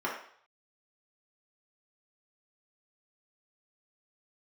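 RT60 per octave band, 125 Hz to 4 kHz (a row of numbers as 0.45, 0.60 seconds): 0.60, 0.45, 0.55, 0.60, 0.55, 0.60 seconds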